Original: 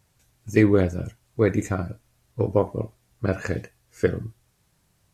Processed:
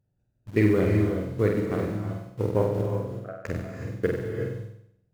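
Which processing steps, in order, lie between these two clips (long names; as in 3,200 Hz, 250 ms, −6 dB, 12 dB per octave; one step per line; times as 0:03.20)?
adaptive Wiener filter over 41 samples
in parallel at −6.5 dB: bit reduction 6 bits
0:02.82–0:03.45: on the sum: pair of resonant band-passes 930 Hz, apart 0.89 octaves
on a send: flutter between parallel walls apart 8.1 metres, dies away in 0.72 s
on the sum: reverb whose tail is shaped and stops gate 400 ms rising, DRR 4.5 dB
level −8 dB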